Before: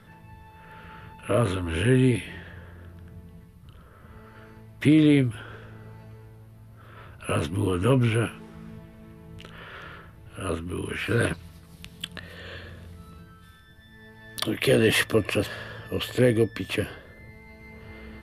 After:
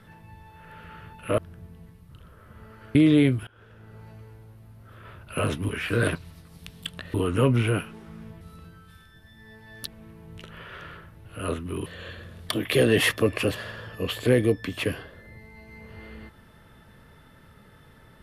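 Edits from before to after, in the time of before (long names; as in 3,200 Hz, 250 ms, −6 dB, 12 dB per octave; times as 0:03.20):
0:01.38–0:02.92: remove
0:04.49–0:04.87: remove
0:05.39–0:05.99: fade in, from −23 dB
0:10.87–0:12.32: move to 0:07.61
0:12.95–0:14.41: move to 0:08.88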